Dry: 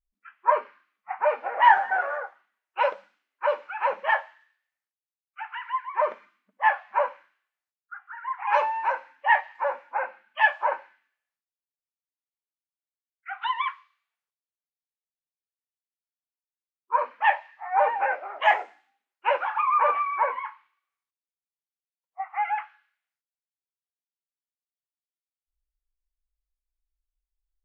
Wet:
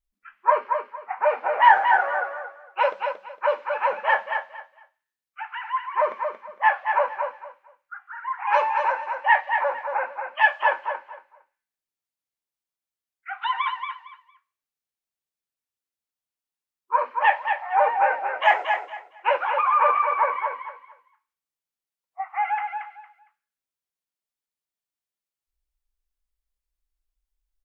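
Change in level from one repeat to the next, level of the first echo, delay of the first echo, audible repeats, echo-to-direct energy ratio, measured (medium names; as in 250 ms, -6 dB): -13.0 dB, -6.0 dB, 229 ms, 3, -6.0 dB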